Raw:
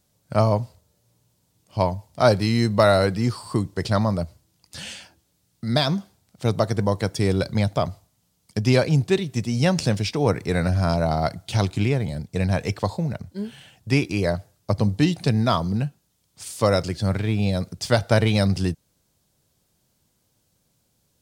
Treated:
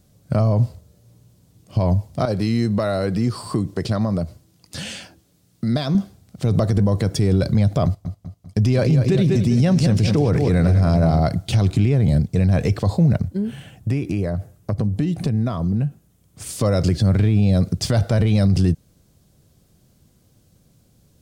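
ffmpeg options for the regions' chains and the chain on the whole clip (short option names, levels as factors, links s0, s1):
-filter_complex "[0:a]asettb=1/sr,asplit=3[s0][s1][s2];[s0]atrim=end=2.254[s3];[s1]atrim=start=2.25:end=5.95,asetpts=PTS-STARTPTS,afade=t=in:d=0.004:c=qsin,afade=t=out:st=3.696:d=0.004:c=qsin,highpass=f=170:p=1,acompressor=threshold=0.0224:ratio=2.5:attack=3.2:release=140:knee=1:detection=peak[s4];[s2]atrim=start=5.946[s5];[s3][s4]acrossfade=d=0.004:c1=hsin:c2=qsin[s6];[s6][s5]acrossfade=d=0.004:c1=qsin:c2=hsin,asettb=1/sr,asplit=3[s7][s8][s9];[s7]atrim=end=7.854[s10];[s8]atrim=start=7.85:end=11.2,asetpts=PTS-STARTPTS,afade=t=in:d=0.004:c=qsin,afade=t=out:st=3.346:d=0.004:c=qsin,agate=range=0.251:threshold=0.0112:ratio=16:release=100:detection=peak,aecho=1:1:197|394|591|788|985:0.316|0.152|0.0729|0.035|0.0168,atrim=end_sample=147735[s11];[s9]atrim=start=11.196[s12];[s10][s11]acrossfade=d=0.004:c1=hsin:c2=qsin[s13];[s13][s12]acrossfade=d=0.004:c1=qsin:c2=hsin,asettb=1/sr,asplit=3[s14][s15][s16];[s14]atrim=end=13.284[s17];[s15]atrim=start=13.28:end=16.49,asetpts=PTS-STARTPTS,afade=t=in:d=0.004:c=qsin,afade=t=out:st=3.206:d=0.004:c=qsin,equalizer=f=4500:w=1.2:g=-7,acompressor=threshold=0.0251:ratio=5:attack=3.2:release=140:knee=1:detection=peak[s18];[s16]atrim=start=16.486[s19];[s17][s18]acrossfade=d=0.004:c1=hsin:c2=qsin[s20];[s20][s19]acrossfade=d=0.004:c1=qsin:c2=hsin,lowshelf=f=470:g=11,bandreject=f=900:w=9.7,alimiter=level_in=4.47:limit=0.891:release=50:level=0:latency=1,volume=0.376"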